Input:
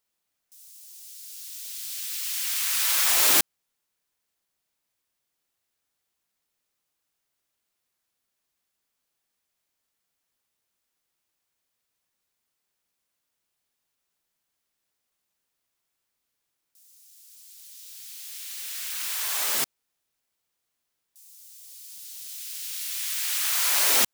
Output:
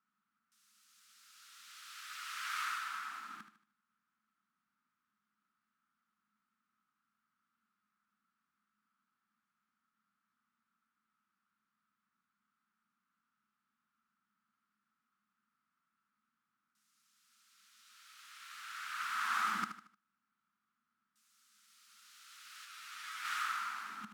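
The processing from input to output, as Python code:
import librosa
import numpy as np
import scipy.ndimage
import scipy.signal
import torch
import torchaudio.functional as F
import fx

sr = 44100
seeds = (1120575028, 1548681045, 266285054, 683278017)

y = fx.over_compress(x, sr, threshold_db=-27.0, ratio=-0.5)
y = fx.double_bandpass(y, sr, hz=530.0, octaves=2.6)
y = fx.echo_feedback(y, sr, ms=76, feedback_pct=38, wet_db=-10)
y = fx.ensemble(y, sr, at=(22.64, 23.24), fade=0.02)
y = y * librosa.db_to_amplitude(9.5)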